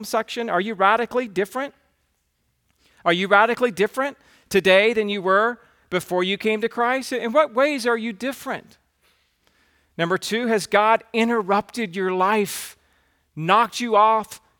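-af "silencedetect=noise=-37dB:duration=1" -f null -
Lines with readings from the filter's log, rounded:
silence_start: 1.69
silence_end: 3.05 | silence_duration: 1.37
silence_start: 8.71
silence_end: 9.98 | silence_duration: 1.27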